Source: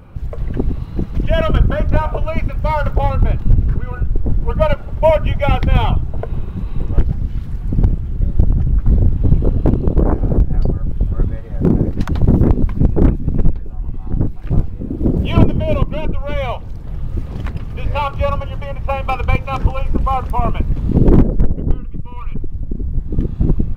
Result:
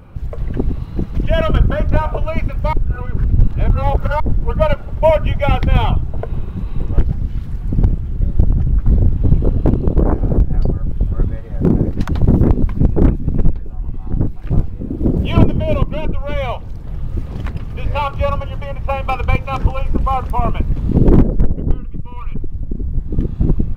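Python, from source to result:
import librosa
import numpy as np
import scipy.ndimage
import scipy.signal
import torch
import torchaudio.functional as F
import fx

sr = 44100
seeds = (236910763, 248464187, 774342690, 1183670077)

y = fx.edit(x, sr, fx.reverse_span(start_s=2.73, length_s=1.47), tone=tone)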